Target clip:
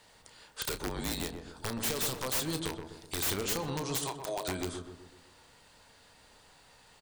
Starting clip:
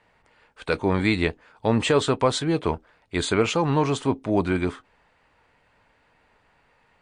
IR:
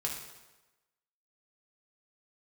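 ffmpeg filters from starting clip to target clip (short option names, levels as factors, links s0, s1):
-filter_complex "[0:a]asettb=1/sr,asplit=3[s0][s1][s2];[s0]atrim=end=1.964[s3];[s1]atrim=start=1.96:end=3.16,asetpts=PTS-STARTPTS,afade=t=in:d=0.004:c=qsin,afade=t=out:st=1.196:d=0.004:c=qsin,equalizer=f=8700:t=o:w=2.4:g=6.5[s4];[s2]atrim=start=3.156[s5];[s3][s4]acrossfade=d=0.004:c1=hsin:c2=qsin[s6];[s6][s5]acrossfade=d=0.004:c1=qsin:c2=hsin,asettb=1/sr,asplit=3[s7][s8][s9];[s7]atrim=end=3.964[s10];[s8]atrim=start=3.96:end=4.48,asetpts=PTS-STARTPTS,afade=t=in:d=0.004:c=qsin,afade=t=out:st=0.516:d=0.004:c=qsin,highpass=f=560:w=0.5412,highpass=f=560:w=1.3066[s11];[s9]atrim=start=4.476[s12];[s10][s11]acrossfade=d=0.004:c1=hsin:c2=qsin[s13];[s13][s12]acrossfade=d=0.004:c1=qsin:c2=hsin,acompressor=threshold=0.0224:ratio=12,aexciter=amount=4.6:drive=7.4:freq=3400,aeval=exprs='(mod(18.8*val(0)+1,2)-1)/18.8':c=same,asettb=1/sr,asplit=3[s14][s15][s16];[s14]atrim=end=0.694[s17];[s15]atrim=start=0.69:end=1.23,asetpts=PTS-STARTPTS,afade=t=in:d=0.004:c=qsin,afade=t=out:st=0.536:d=0.004:c=qsin,afreqshift=-41[s18];[s16]atrim=start=1.226[s19];[s17][s18]acrossfade=d=0.004:c1=hsin:c2=qsin[s20];[s20][s19]acrossfade=d=0.004:c1=qsin:c2=hsin,asplit=2[s21][s22];[s22]adelay=31,volume=0.282[s23];[s21][s23]amix=inputs=2:normalize=0,asplit=2[s24][s25];[s25]adelay=126,lowpass=f=930:p=1,volume=0.596,asplit=2[s26][s27];[s27]adelay=126,lowpass=f=930:p=1,volume=0.53,asplit=2[s28][s29];[s29]adelay=126,lowpass=f=930:p=1,volume=0.53,asplit=2[s30][s31];[s31]adelay=126,lowpass=f=930:p=1,volume=0.53,asplit=2[s32][s33];[s33]adelay=126,lowpass=f=930:p=1,volume=0.53,asplit=2[s34][s35];[s35]adelay=126,lowpass=f=930:p=1,volume=0.53,asplit=2[s36][s37];[s37]adelay=126,lowpass=f=930:p=1,volume=0.53[s38];[s24][s26][s28][s30][s32][s34][s36][s38]amix=inputs=8:normalize=0"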